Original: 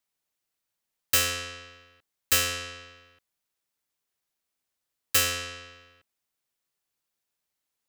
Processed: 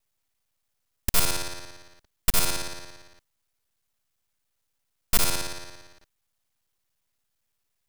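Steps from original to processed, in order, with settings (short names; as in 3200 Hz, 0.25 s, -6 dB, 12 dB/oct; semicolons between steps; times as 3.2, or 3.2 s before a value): local time reversal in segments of 57 ms; in parallel at -2 dB: limiter -21 dBFS, peak gain reduction 10.5 dB; on the sum: full-wave rectifier; gain +2 dB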